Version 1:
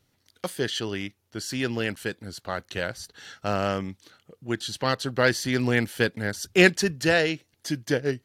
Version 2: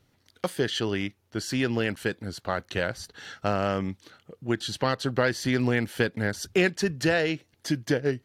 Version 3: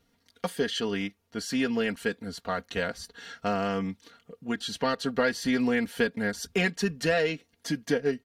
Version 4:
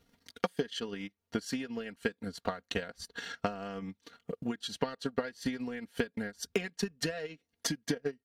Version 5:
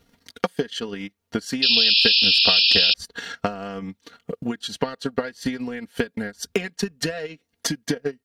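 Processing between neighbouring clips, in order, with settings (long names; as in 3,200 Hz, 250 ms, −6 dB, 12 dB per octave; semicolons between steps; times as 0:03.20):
downward compressor 3 to 1, threshold −25 dBFS, peak gain reduction 10.5 dB; high-shelf EQ 3,800 Hz −7 dB; level +4 dB
comb filter 4.3 ms, depth 77%; level −3.5 dB
downward compressor 4 to 1, threshold −39 dBFS, peak gain reduction 16 dB; transient designer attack +10 dB, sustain −11 dB
sound drawn into the spectrogram noise, 0:01.62–0:02.94, 2,400–5,400 Hz −25 dBFS; level +8 dB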